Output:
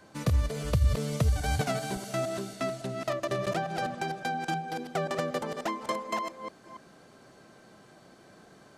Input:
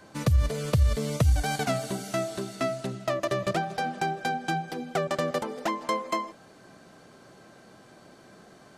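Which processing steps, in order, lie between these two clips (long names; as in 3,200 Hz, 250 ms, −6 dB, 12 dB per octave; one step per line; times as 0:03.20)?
delay that plays each chunk backwards 282 ms, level −6 dB
level −3.5 dB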